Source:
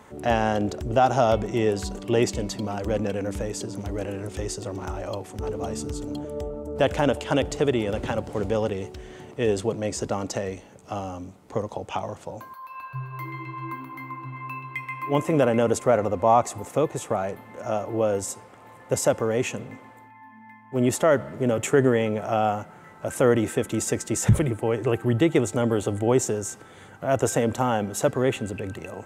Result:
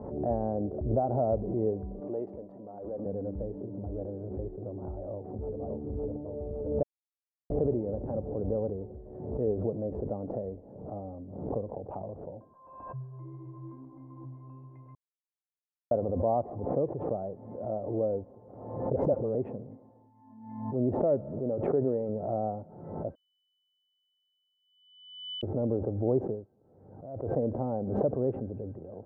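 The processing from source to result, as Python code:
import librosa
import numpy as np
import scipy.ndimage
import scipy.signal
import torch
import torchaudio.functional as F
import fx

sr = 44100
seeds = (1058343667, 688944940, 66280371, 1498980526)

y = fx.highpass(x, sr, hz=820.0, slope=6, at=(2.0, 3.06))
y = fx.echo_throw(y, sr, start_s=5.13, length_s=0.47, ms=560, feedback_pct=75, wet_db=-0.5)
y = fx.dispersion(y, sr, late='highs', ms=45.0, hz=620.0, at=(18.92, 19.35))
y = fx.low_shelf(y, sr, hz=230.0, db=-7.5, at=(21.39, 22.09))
y = fx.edit(y, sr, fx.silence(start_s=6.83, length_s=0.67),
    fx.silence(start_s=14.95, length_s=0.96),
    fx.bleep(start_s=23.15, length_s=2.28, hz=3000.0, db=-21.0),
    fx.fade_down_up(start_s=26.29, length_s=1.09, db=-13.0, fade_s=0.18), tone=tone)
y = fx.wiener(y, sr, points=9)
y = scipy.signal.sosfilt(scipy.signal.cheby1(3, 1.0, 630.0, 'lowpass', fs=sr, output='sos'), y)
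y = fx.pre_swell(y, sr, db_per_s=54.0)
y = y * librosa.db_to_amplitude(-6.0)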